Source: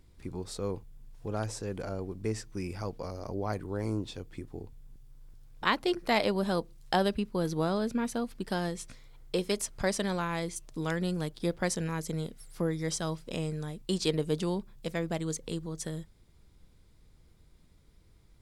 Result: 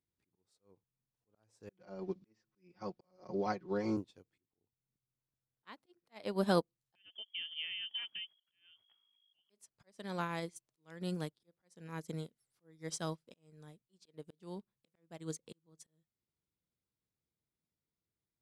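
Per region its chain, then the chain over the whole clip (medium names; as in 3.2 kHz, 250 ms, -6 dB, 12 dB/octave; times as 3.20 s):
1.69–3.97 s: steep low-pass 6 kHz + comb 5.5 ms, depth 91% + three bands compressed up and down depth 70%
6.95–9.50 s: compression 2:1, threshold -34 dBFS + frequency inversion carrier 3.3 kHz
whole clip: high-pass 120 Hz 12 dB/octave; slow attack 364 ms; upward expansion 2.5:1, over -47 dBFS; trim +2 dB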